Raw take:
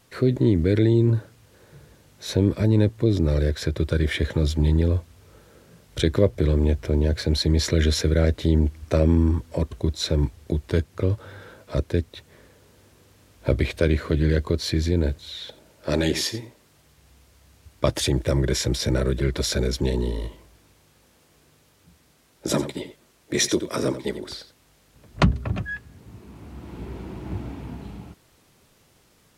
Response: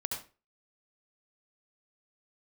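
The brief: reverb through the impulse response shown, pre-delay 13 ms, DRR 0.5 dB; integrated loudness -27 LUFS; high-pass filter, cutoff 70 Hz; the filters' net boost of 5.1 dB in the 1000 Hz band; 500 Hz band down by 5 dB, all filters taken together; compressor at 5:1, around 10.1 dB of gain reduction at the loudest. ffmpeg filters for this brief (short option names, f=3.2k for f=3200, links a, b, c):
-filter_complex "[0:a]highpass=70,equalizer=f=500:t=o:g=-8.5,equalizer=f=1k:t=o:g=8.5,acompressor=threshold=-24dB:ratio=5,asplit=2[a][b];[1:a]atrim=start_sample=2205,adelay=13[c];[b][c]afir=irnorm=-1:irlink=0,volume=-2.5dB[d];[a][d]amix=inputs=2:normalize=0"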